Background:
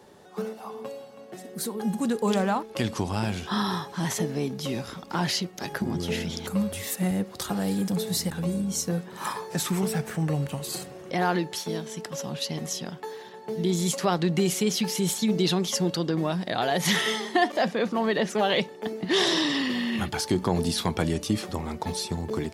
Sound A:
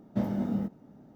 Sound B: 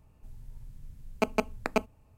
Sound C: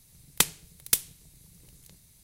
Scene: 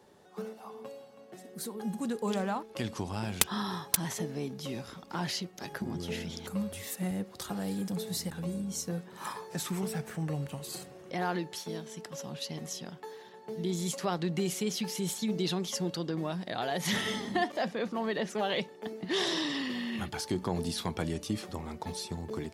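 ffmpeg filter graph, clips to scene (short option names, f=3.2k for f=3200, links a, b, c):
-filter_complex "[0:a]volume=-7.5dB[a];[3:a]aeval=exprs='val(0)*gte(abs(val(0)),0.0944)':c=same,atrim=end=2.23,asetpts=PTS-STARTPTS,volume=-4dB,afade=t=in:d=0.004:c=hsin,afade=t=out:st=2.226:d=0.004:c=hsin,adelay=3010[b];[1:a]atrim=end=1.15,asetpts=PTS-STARTPTS,volume=-10dB,afade=t=in:d=0.004:c=hsin,afade=t=out:st=1.146:d=0.004:c=hsin,adelay=16760[c];[a][b][c]amix=inputs=3:normalize=0"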